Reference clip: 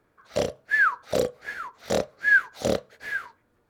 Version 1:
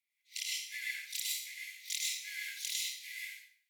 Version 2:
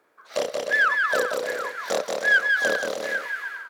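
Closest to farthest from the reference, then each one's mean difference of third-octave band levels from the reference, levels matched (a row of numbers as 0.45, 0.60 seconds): 2, 1; 8.5, 19.5 decibels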